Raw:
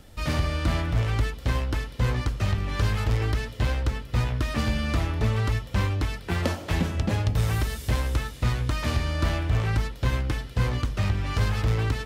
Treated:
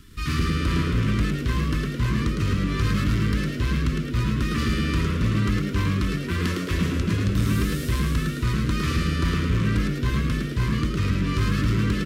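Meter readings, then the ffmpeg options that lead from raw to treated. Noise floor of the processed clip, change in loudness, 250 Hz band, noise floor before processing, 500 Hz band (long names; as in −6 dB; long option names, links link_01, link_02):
−30 dBFS, +2.5 dB, +8.0 dB, −41 dBFS, +0.5 dB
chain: -filter_complex "[0:a]afftfilt=real='re*(1-between(b*sr/4096,410,960))':imag='im*(1-between(b*sr/4096,410,960))':win_size=4096:overlap=0.75,asoftclip=type=tanh:threshold=-15.5dB,asplit=7[link_01][link_02][link_03][link_04][link_05][link_06][link_07];[link_02]adelay=108,afreqshift=93,volume=-4dB[link_08];[link_03]adelay=216,afreqshift=186,volume=-10.7dB[link_09];[link_04]adelay=324,afreqshift=279,volume=-17.5dB[link_10];[link_05]adelay=432,afreqshift=372,volume=-24.2dB[link_11];[link_06]adelay=540,afreqshift=465,volume=-31dB[link_12];[link_07]adelay=648,afreqshift=558,volume=-37.7dB[link_13];[link_01][link_08][link_09][link_10][link_11][link_12][link_13]amix=inputs=7:normalize=0,volume=1.5dB"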